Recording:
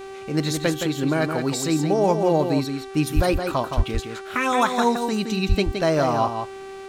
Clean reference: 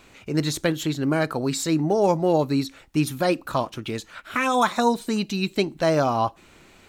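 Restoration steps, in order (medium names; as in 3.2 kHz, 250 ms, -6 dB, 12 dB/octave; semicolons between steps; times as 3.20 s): de-hum 388 Hz, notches 28; 3.15–3.27 s: high-pass 140 Hz 24 dB/octave; 3.76–3.88 s: high-pass 140 Hz 24 dB/octave; 5.48–5.60 s: high-pass 140 Hz 24 dB/octave; inverse comb 168 ms -6.5 dB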